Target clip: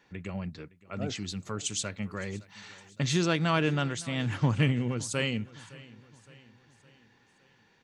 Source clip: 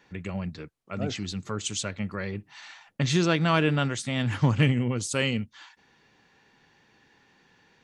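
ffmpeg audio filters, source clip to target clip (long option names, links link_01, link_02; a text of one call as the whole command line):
ffmpeg -i in.wav -filter_complex "[0:a]asettb=1/sr,asplit=3[link_01][link_02][link_03];[link_01]atrim=end=1.014[link_04];[link_02]atrim=start=1.01:end=3.51,asetpts=PTS-STARTPTS,afade=type=in:duration=0.004:curve=qsin,afade=type=out:start_time=2.496:duration=0.004:curve=qsin,highshelf=frequency=8800:gain=9[link_05];[link_03]atrim=start=3.506[link_06];[link_04][link_05]acrossfade=duration=0.004:curve1=hsin:curve2=qsin[link_07];[link_07][link_06]acrossfade=duration=0.004:curve1=qsin:curve2=hsin,aecho=1:1:563|1126|1689|2252:0.0891|0.0446|0.0223|0.0111,volume=-3.5dB" out.wav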